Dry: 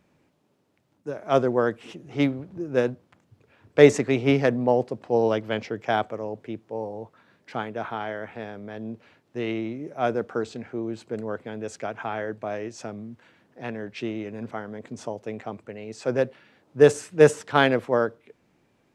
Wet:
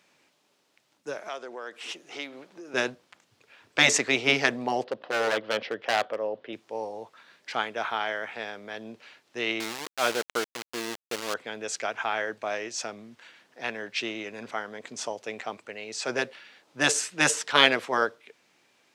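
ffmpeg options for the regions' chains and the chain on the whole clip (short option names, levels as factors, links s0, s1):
-filter_complex "[0:a]asettb=1/sr,asplit=3[s0][s1][s2];[s0]atrim=end=1.284[s3];[s1]atrim=start=1.28:end=2.74,asetpts=PTS-STARTPTS,afade=t=in:d=0.004:c=qsin,afade=t=out:st=1.456:d=0.004:c=qsin,highpass=290,acompressor=threshold=0.02:ratio=6:attack=3.2:release=140:knee=1:detection=peak[s4];[s2]atrim=start=2.736[s5];[s3][s4]acrossfade=d=0.004:c1=hsin:c2=qsin[s6];[s6][s5]acrossfade=d=0.004:c1=qsin:c2=hsin,asettb=1/sr,asplit=3[s7][s8][s9];[s7]atrim=end=4.844[s10];[s8]atrim=start=4.84:end=6.53,asetpts=PTS-STARTPTS,afade=t=in:d=0.004:c=qsin,afade=t=out:st=1.686:d=0.004:c=qsin,highpass=110,equalizer=f=540:t=q:w=4:g=7,equalizer=f=880:t=q:w=4:g=-3,equalizer=f=2300:t=q:w=4:g=-8,lowpass=f=3500:w=0.5412,lowpass=f=3500:w=1.3066,asoftclip=type=hard:threshold=0.112[s11];[s9]atrim=start=6.526[s12];[s10][s11]acrossfade=d=0.004:c1=hsin:c2=qsin[s13];[s13][s12]acrossfade=d=0.004:c1=qsin:c2=hsin,asettb=1/sr,asplit=3[s14][s15][s16];[s14]atrim=end=9.604[s17];[s15]atrim=start=9.6:end=11.34,asetpts=PTS-STARTPTS,afade=t=in:d=0.004:c=qsin,afade=t=out:st=1.736:d=0.004:c=qsin,equalizer=f=170:w=4.4:g=-6,aeval=exprs='val(0)*gte(abs(val(0)),0.0266)':c=same[s18];[s16]atrim=start=11.336[s19];[s17][s18]acrossfade=d=0.004:c1=hsin:c2=qsin[s20];[s20][s19]acrossfade=d=0.004:c1=qsin:c2=hsin,highpass=f=950:p=1,afftfilt=real='re*lt(hypot(re,im),0.355)':imag='im*lt(hypot(re,im),0.355)':win_size=1024:overlap=0.75,equalizer=f=4800:w=0.48:g=7.5,volume=1.58"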